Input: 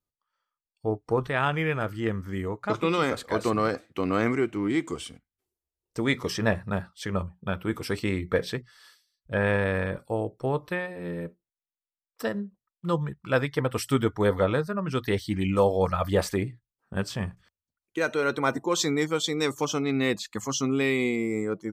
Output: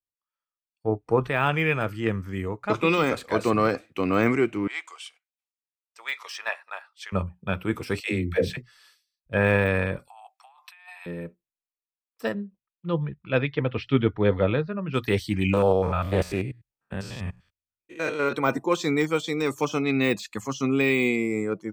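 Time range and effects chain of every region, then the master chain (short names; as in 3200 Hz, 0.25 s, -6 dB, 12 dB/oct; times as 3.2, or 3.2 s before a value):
4.67–7.12 HPF 800 Hz 24 dB/oct + high shelf 6400 Hz -10 dB
8–8.57 bell 1100 Hz -13 dB 0.55 oct + dispersion lows, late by 94 ms, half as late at 390 Hz
10.08–11.06 rippled Chebyshev high-pass 720 Hz, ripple 3 dB + negative-ratio compressor -46 dBFS
12.34–14.94 steep low-pass 3900 Hz + bell 1100 Hz -6.5 dB 1.7 oct
15.53–18.33 stepped spectrum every 0.1 s + Doppler distortion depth 0.16 ms
whole clip: de-esser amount 95%; bell 2500 Hz +7.5 dB 0.26 oct; three-band expander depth 40%; gain +2.5 dB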